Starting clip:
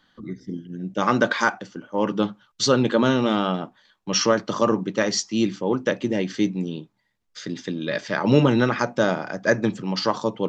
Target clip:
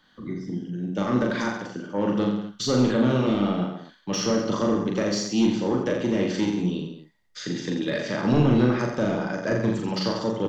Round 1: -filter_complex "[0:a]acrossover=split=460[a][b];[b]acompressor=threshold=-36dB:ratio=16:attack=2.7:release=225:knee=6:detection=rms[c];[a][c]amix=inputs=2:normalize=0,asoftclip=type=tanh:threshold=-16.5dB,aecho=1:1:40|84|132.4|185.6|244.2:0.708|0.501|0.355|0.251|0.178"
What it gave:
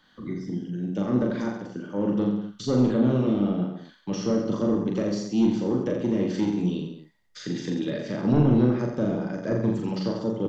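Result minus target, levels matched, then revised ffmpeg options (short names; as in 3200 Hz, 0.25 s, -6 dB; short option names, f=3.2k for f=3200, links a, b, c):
compressor: peak gain reduction +11 dB
-filter_complex "[0:a]acrossover=split=460[a][b];[b]acompressor=threshold=-24.5dB:ratio=16:attack=2.7:release=225:knee=6:detection=rms[c];[a][c]amix=inputs=2:normalize=0,asoftclip=type=tanh:threshold=-16.5dB,aecho=1:1:40|84|132.4|185.6|244.2:0.708|0.501|0.355|0.251|0.178"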